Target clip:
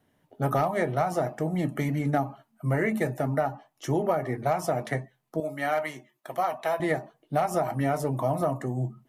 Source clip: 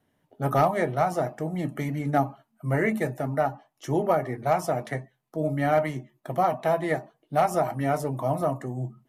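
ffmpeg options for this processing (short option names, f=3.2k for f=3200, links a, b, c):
-filter_complex "[0:a]asettb=1/sr,asplit=3[a][b][c];[a]atrim=end=5.404[d];[b]atrim=start=5.4:end=6.8,asetpts=PTS-STARTPTS,afade=t=in:d=0.004:c=qsin,afade=t=out:st=1.396:d=0.004:c=qsin,highpass=f=1k:p=1[e];[c]atrim=start=6.796[f];[d][e]acrossfade=d=0.004:c1=hsin:c2=qsin[g];[g][f]acrossfade=d=0.004:c1=qsin:c2=hsin,acompressor=threshold=-24dB:ratio=5,volume=2.5dB"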